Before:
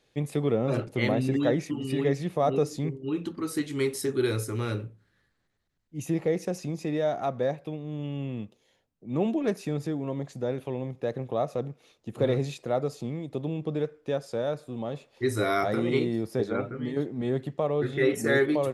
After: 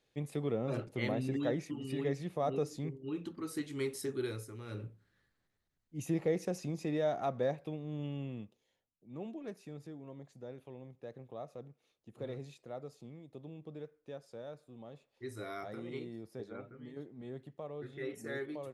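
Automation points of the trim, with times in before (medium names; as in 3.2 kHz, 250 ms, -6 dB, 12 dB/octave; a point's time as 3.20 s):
4.11 s -9 dB
4.64 s -17.5 dB
4.85 s -5.5 dB
8.04 s -5.5 dB
9.12 s -17 dB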